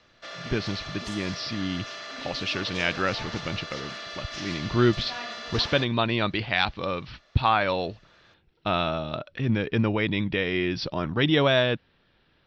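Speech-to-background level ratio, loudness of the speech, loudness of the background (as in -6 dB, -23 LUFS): 9.5 dB, -26.5 LUFS, -36.0 LUFS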